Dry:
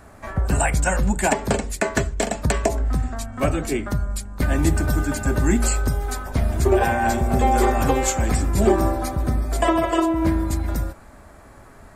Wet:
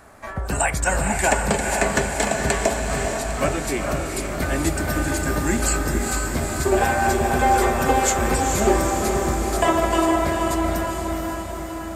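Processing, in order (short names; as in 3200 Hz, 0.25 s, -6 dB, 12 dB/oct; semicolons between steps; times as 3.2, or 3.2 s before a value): low shelf 300 Hz -8.5 dB; diffused feedback echo 0.463 s, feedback 64%, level -3.5 dB; gain +1.5 dB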